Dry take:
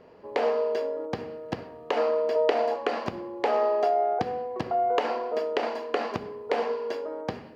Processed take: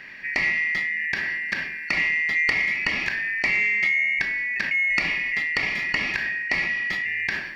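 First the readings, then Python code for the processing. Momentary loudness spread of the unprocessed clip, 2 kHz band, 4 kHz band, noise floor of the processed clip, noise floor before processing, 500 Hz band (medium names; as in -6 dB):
11 LU, +20.5 dB, +8.5 dB, -34 dBFS, -45 dBFS, -19.0 dB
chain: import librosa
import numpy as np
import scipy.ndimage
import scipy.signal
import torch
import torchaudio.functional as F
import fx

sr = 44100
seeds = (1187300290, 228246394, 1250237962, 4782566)

p1 = fx.band_shuffle(x, sr, order='2143')
p2 = fx.graphic_eq_31(p1, sr, hz=(500, 2000, 4000), db=(-5, -4, 8))
p3 = fx.over_compress(p2, sr, threshold_db=-40.0, ratio=-1.0)
p4 = p2 + F.gain(torch.from_numpy(p3), -1.5).numpy()
p5 = 10.0 ** (-12.0 / 20.0) * np.tanh(p4 / 10.0 ** (-12.0 / 20.0))
y = F.gain(torch.from_numpy(p5), 4.0).numpy()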